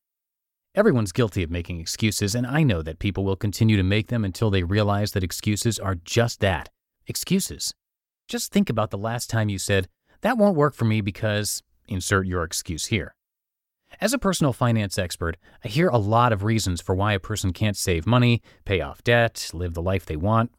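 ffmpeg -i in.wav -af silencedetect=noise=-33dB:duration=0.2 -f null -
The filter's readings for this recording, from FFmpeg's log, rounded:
silence_start: 0.00
silence_end: 0.77 | silence_duration: 0.77
silence_start: 6.66
silence_end: 7.10 | silence_duration: 0.43
silence_start: 7.71
silence_end: 8.29 | silence_duration: 0.59
silence_start: 9.85
silence_end: 10.23 | silence_duration: 0.38
silence_start: 11.59
silence_end: 11.89 | silence_duration: 0.30
silence_start: 13.08
silence_end: 13.93 | silence_duration: 0.86
silence_start: 15.34
silence_end: 15.65 | silence_duration: 0.31
silence_start: 18.38
silence_end: 18.67 | silence_duration: 0.29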